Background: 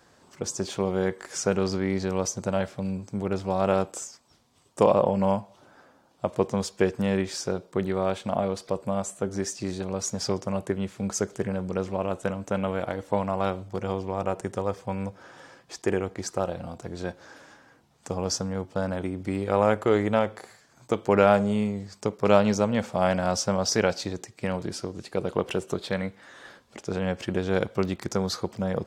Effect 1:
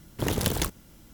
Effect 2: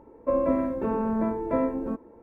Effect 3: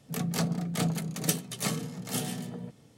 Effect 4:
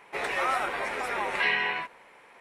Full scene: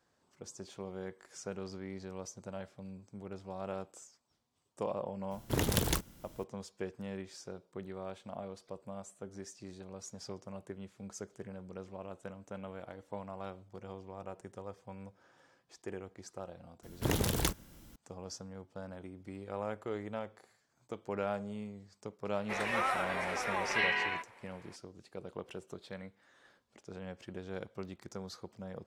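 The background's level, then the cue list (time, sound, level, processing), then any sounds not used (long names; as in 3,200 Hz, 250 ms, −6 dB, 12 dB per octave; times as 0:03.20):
background −17 dB
0:05.31: mix in 1 −4 dB
0:16.83: mix in 1 −3.5 dB + brickwall limiter −10 dBFS
0:22.36: mix in 4 −5 dB
not used: 2, 3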